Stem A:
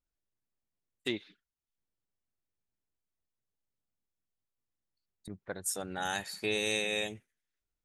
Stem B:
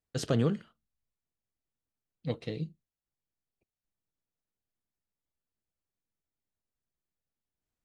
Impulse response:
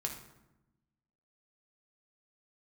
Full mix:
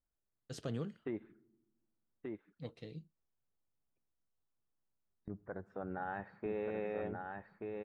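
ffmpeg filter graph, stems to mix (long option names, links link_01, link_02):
-filter_complex "[0:a]lowpass=frequency=1500:width=0.5412,lowpass=frequency=1500:width=1.3066,alimiter=level_in=6dB:limit=-24dB:level=0:latency=1:release=41,volume=-6dB,volume=-1.5dB,asplit=3[link_01][link_02][link_03];[link_02]volume=-17dB[link_04];[link_03]volume=-3dB[link_05];[1:a]adelay=350,volume=-12.5dB[link_06];[2:a]atrim=start_sample=2205[link_07];[link_04][link_07]afir=irnorm=-1:irlink=0[link_08];[link_05]aecho=0:1:1182:1[link_09];[link_01][link_06][link_08][link_09]amix=inputs=4:normalize=0"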